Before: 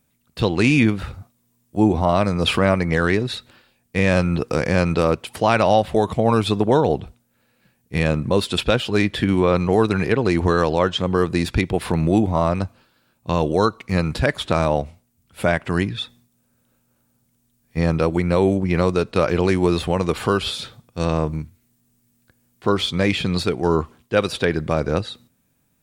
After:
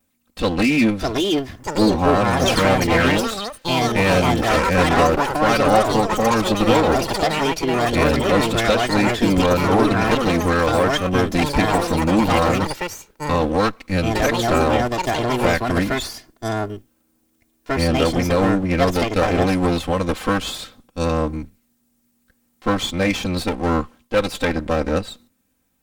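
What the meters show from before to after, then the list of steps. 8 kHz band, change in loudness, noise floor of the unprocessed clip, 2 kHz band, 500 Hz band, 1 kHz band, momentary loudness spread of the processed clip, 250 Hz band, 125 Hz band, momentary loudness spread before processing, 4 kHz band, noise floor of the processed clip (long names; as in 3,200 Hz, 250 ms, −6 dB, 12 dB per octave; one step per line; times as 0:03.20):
+7.5 dB, +1.5 dB, −66 dBFS, +3.5 dB, +1.0 dB, +4.5 dB, 9 LU, +1.5 dB, −1.0 dB, 9 LU, +2.5 dB, −66 dBFS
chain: lower of the sound and its delayed copy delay 3.8 ms
delay with pitch and tempo change per echo 716 ms, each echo +5 semitones, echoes 3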